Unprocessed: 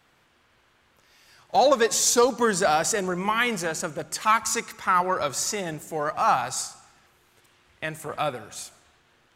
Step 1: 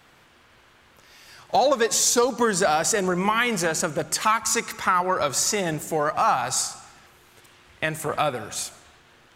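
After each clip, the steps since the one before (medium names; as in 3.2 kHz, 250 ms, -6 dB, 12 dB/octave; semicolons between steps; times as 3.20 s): compression 2.5:1, threshold -28 dBFS, peak gain reduction 9.5 dB; trim +7.5 dB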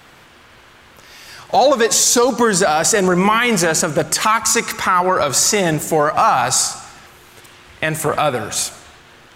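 loudness maximiser +13.5 dB; trim -3.5 dB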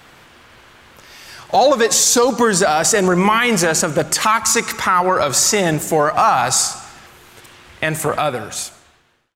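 fade out at the end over 1.38 s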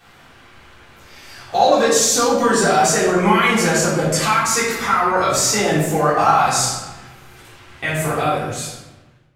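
simulated room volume 320 m³, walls mixed, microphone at 3.6 m; trim -11 dB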